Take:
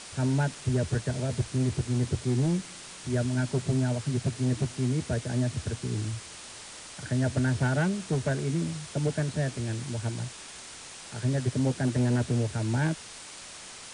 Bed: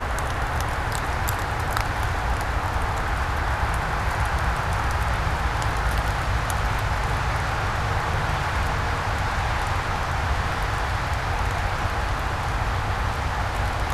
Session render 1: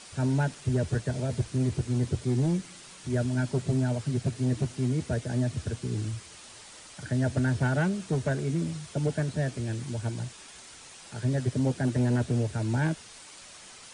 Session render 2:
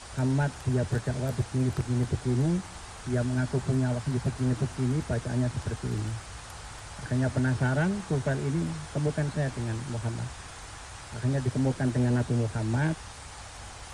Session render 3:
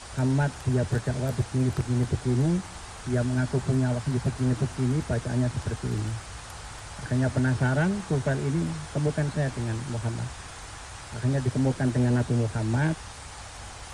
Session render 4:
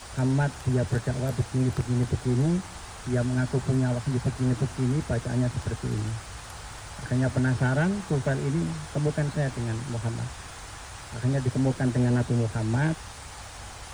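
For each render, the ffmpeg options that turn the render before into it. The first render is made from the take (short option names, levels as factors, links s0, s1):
-af "afftdn=nr=6:nf=-45"
-filter_complex "[1:a]volume=0.1[s0];[0:a][s0]amix=inputs=2:normalize=0"
-af "volume=1.26"
-af "aeval=exprs='val(0)*gte(abs(val(0)),0.00251)':c=same"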